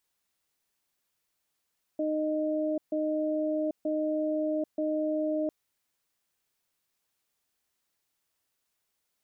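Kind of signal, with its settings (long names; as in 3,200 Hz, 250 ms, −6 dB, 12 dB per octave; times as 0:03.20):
tone pair in a cadence 308 Hz, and 617 Hz, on 0.79 s, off 0.14 s, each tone −29 dBFS 3.50 s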